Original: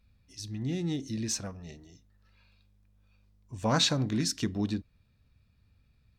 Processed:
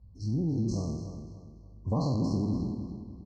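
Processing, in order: spectral sustain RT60 1.75 s; high-pass 44 Hz 24 dB/octave; tilt EQ -3 dB/octave; compression 3:1, threshold -27 dBFS, peak gain reduction 9.5 dB; tempo 1.9×; brick-wall FIR band-stop 1.2–4 kHz; distance through air 110 m; filtered feedback delay 290 ms, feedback 38%, low-pass 4.9 kHz, level -9.5 dB

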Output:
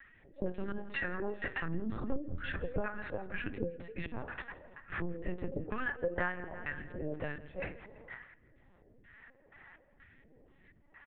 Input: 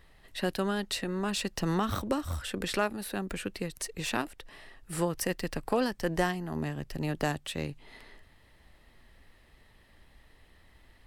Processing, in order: 0.72–1.41 s: doubling 29 ms -10 dB; reverberation RT60 0.40 s, pre-delay 3 ms, DRR 7 dB; phase shifter stages 2, 0.6 Hz, lowest notch 100–1800 Hz; LFO low-pass square 2.1 Hz 510–1600 Hz; 6.53–7.44 s: bass shelf 480 Hz -8 dB; LPC vocoder at 8 kHz pitch kept; 2.12–2.81 s: bass shelf 140 Hz +10.5 dB; feedback delay 167 ms, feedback 57%, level -21.5 dB; compression 3:1, threshold -32 dBFS, peak gain reduction 15 dB; trim -1 dB

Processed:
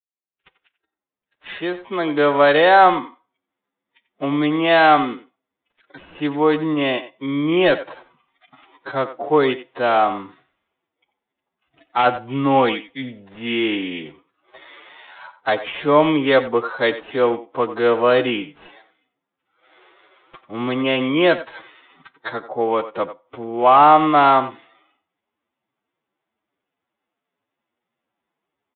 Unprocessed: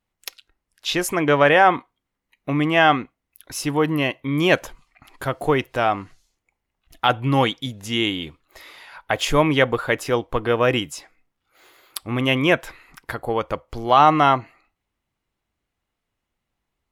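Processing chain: fade-in on the opening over 1.67 s; high-pass 260 Hz 12 dB/octave; de-esser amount 55%; time stretch by phase-locked vocoder 1.7×; distance through air 270 m; careless resampling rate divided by 8×, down none, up hold; speakerphone echo 90 ms, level -13 dB; resampled via 8 kHz; trim +4.5 dB

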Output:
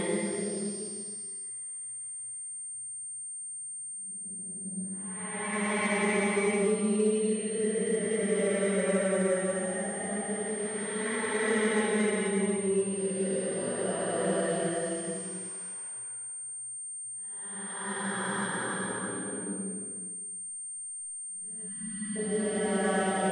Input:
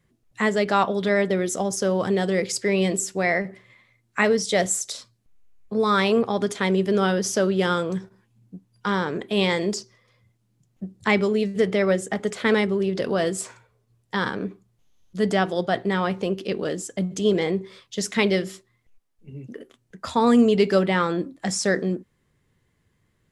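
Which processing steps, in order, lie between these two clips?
Paulstretch 4×, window 0.50 s, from 9.61 s; spectral selection erased 21.69–22.16 s, 340–910 Hz; class-D stage that switches slowly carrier 8.7 kHz; trim -7 dB

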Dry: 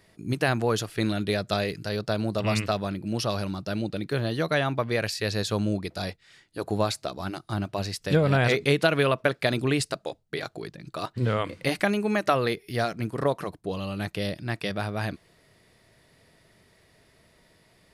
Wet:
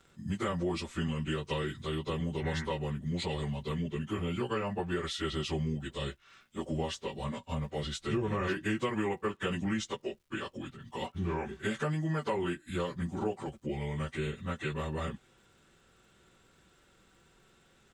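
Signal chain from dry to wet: frequency-domain pitch shifter -5 st; comb 5.2 ms, depth 48%; compression 2.5:1, threshold -30 dBFS, peak gain reduction 8.5 dB; crackle 350 per s -63 dBFS; trim -1.5 dB

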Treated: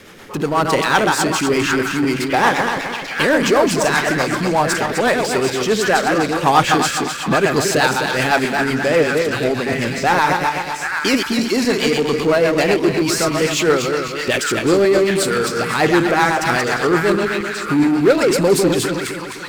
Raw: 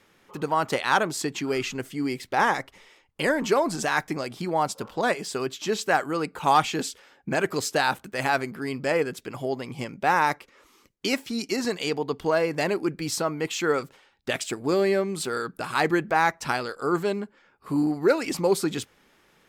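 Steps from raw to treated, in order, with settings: backward echo that repeats 128 ms, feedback 57%, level -5 dB; on a send: repeats whose band climbs or falls 783 ms, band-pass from 1.7 kHz, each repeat 0.7 oct, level -5 dB; on the sum: rotary cabinet horn 8 Hz; power-law waveshaper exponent 0.7; trim +5.5 dB

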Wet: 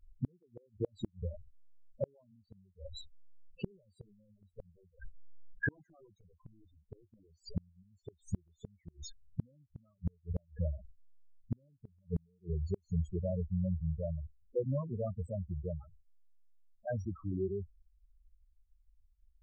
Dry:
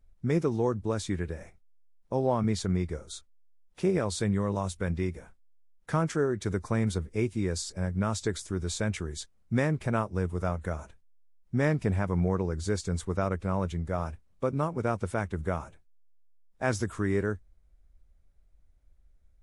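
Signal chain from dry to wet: Doppler pass-by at 5.73 s, 18 m/s, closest 24 m; integer overflow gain 23.5 dB; loudest bins only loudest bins 4; inverted gate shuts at -36 dBFS, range -40 dB; trim +14 dB

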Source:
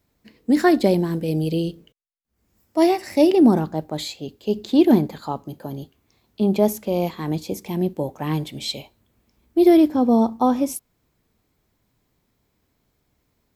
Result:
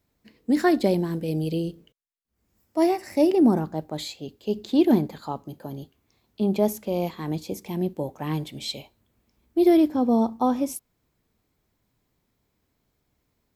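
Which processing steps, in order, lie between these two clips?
1.57–3.76 s: dynamic bell 3.5 kHz, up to -6 dB, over -46 dBFS, Q 1.5; trim -4 dB

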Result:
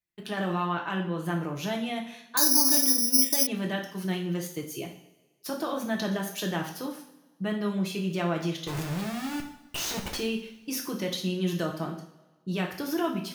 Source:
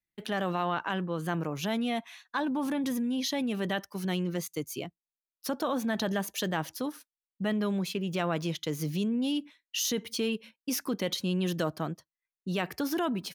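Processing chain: 8.67–10.16 s: Schmitt trigger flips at -37 dBFS; two-slope reverb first 0.52 s, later 1.5 s, from -16 dB, DRR 0 dB; 2.37–3.47 s: careless resampling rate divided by 8×, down filtered, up zero stuff; trim -2.5 dB

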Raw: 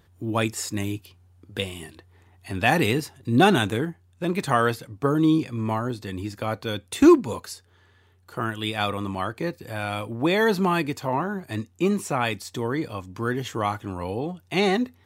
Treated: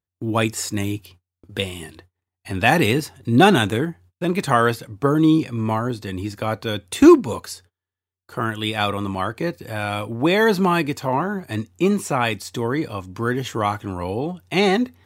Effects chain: gate -50 dBFS, range -36 dB; trim +4 dB

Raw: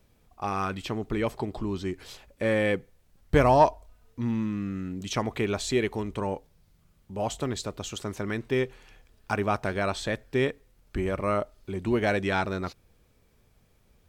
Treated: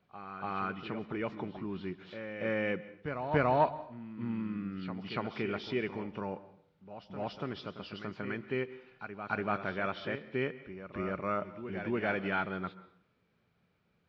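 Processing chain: knee-point frequency compression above 2.5 kHz 1.5:1; cabinet simulation 120–4300 Hz, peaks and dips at 170 Hz +7 dB, 1.4 kHz +7 dB, 2.4 kHz +3 dB; on a send: reverse echo 287 ms -9.5 dB; on the sum: plate-style reverb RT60 0.63 s, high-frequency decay 0.85×, pre-delay 120 ms, DRR 16.5 dB; trim -8.5 dB

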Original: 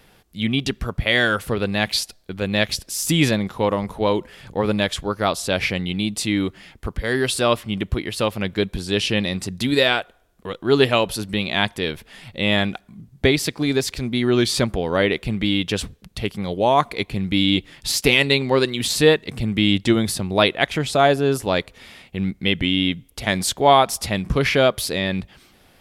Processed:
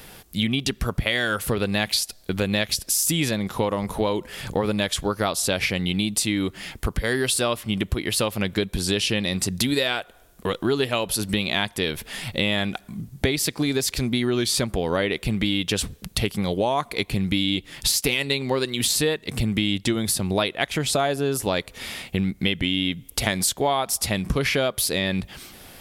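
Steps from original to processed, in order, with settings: treble shelf 6.3 kHz +10 dB; compression 6:1, threshold -28 dBFS, peak gain reduction 18 dB; trim +7.5 dB

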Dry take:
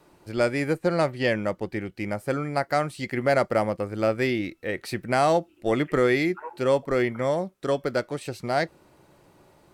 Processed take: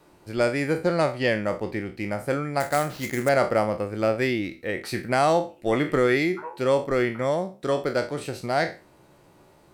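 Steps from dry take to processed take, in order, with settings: spectral sustain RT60 0.32 s; 2.60–3.29 s: sample-rate reducer 9.1 kHz, jitter 20%

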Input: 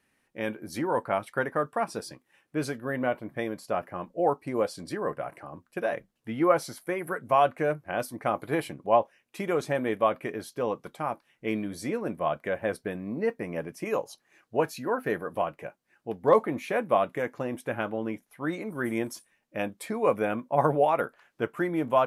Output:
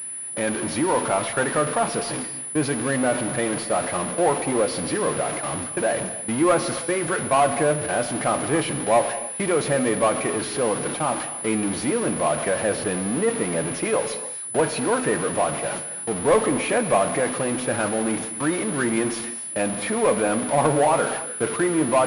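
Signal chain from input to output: jump at every zero crossing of -28 dBFS; gate with hold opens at -27 dBFS; high-pass 97 Hz; in parallel at -6.5 dB: wavefolder -18 dBFS; on the sum: gated-style reverb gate 320 ms flat, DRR 10 dB; class-D stage that switches slowly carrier 10 kHz

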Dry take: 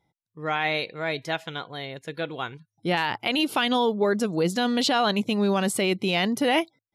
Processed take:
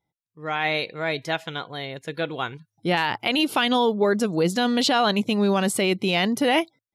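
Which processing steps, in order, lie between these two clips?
level rider gain up to 12.5 dB; trim -8.5 dB

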